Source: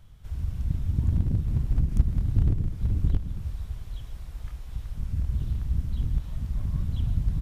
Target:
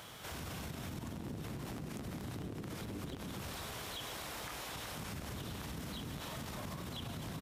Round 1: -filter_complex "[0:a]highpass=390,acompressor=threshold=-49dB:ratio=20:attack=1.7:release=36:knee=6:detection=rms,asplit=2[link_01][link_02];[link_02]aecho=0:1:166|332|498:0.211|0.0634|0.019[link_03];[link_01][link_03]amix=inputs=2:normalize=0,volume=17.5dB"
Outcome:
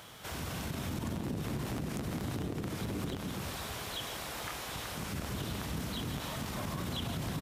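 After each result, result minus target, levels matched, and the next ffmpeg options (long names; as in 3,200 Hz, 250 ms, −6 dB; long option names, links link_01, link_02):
downward compressor: peak gain reduction −7 dB; echo 74 ms early
-filter_complex "[0:a]highpass=390,acompressor=threshold=-56.5dB:ratio=20:attack=1.7:release=36:knee=6:detection=rms,asplit=2[link_01][link_02];[link_02]aecho=0:1:166|332|498:0.211|0.0634|0.019[link_03];[link_01][link_03]amix=inputs=2:normalize=0,volume=17.5dB"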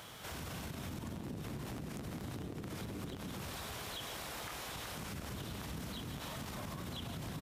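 echo 74 ms early
-filter_complex "[0:a]highpass=390,acompressor=threshold=-56.5dB:ratio=20:attack=1.7:release=36:knee=6:detection=rms,asplit=2[link_01][link_02];[link_02]aecho=0:1:240|480|720:0.211|0.0634|0.019[link_03];[link_01][link_03]amix=inputs=2:normalize=0,volume=17.5dB"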